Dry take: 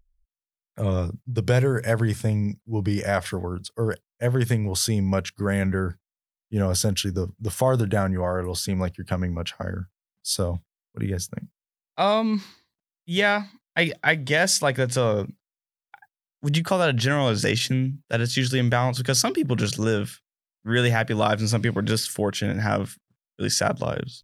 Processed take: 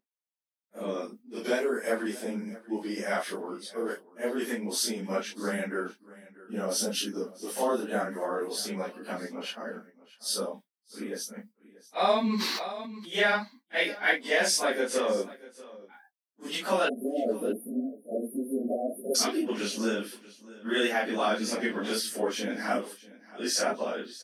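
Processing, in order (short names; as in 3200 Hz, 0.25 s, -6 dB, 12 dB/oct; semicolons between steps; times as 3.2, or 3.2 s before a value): phase scrambler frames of 0.1 s; 16.89–19.15 spectral delete 740–9400 Hz; brick-wall FIR high-pass 200 Hz; notch 7100 Hz, Q 14; echo 0.637 s -19.5 dB; 12.21–13.21 sustainer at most 22 dB/s; gain -4 dB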